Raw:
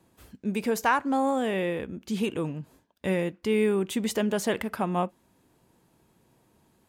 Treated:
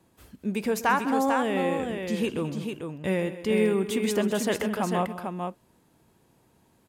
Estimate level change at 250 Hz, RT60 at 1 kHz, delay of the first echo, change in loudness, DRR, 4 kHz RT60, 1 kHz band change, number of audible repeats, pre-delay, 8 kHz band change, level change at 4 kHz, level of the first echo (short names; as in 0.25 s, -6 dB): +1.0 dB, none, 0.13 s, +0.5 dB, none, none, +1.5 dB, 3, none, +1.0 dB, +1.5 dB, -16.0 dB